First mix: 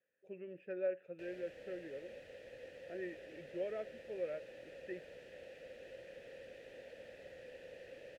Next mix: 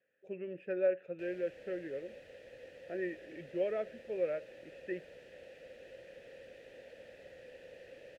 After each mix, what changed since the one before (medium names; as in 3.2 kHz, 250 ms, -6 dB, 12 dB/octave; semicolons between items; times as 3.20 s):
speech +6.5 dB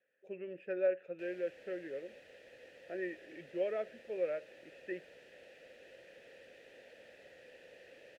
background: add peaking EQ 530 Hz -5 dB 0.34 oct; master: add bass shelf 180 Hz -11.5 dB